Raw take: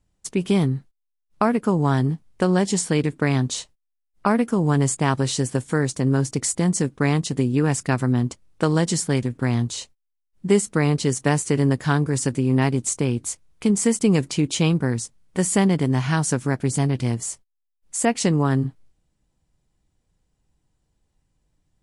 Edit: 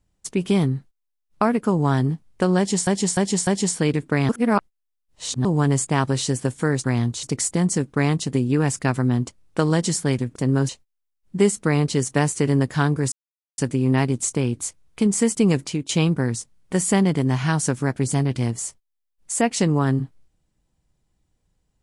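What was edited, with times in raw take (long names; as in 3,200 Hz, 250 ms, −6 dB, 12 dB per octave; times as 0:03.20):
0:02.57–0:02.87: repeat, 4 plays
0:03.39–0:04.55: reverse
0:05.94–0:06.27: swap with 0:09.40–0:09.79
0:12.22: splice in silence 0.46 s
0:14.13–0:14.53: fade out equal-power, to −13 dB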